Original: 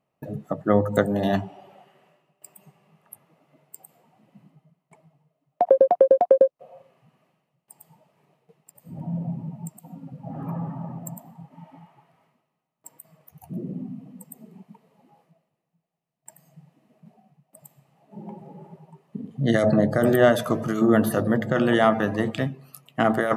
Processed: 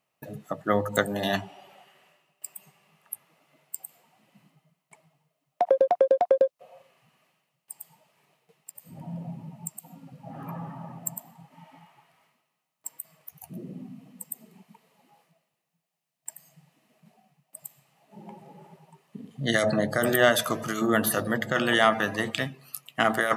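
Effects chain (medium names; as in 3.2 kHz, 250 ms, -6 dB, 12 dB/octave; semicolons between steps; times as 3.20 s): tilt shelf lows -8 dB, about 1.1 kHz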